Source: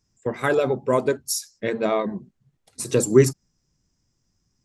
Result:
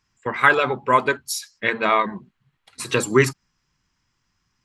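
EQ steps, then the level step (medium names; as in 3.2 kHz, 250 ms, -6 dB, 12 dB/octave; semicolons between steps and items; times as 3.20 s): high-order bell 1.9 kHz +14 dB 2.5 oct; band-stop 3.6 kHz, Q 17; -2.5 dB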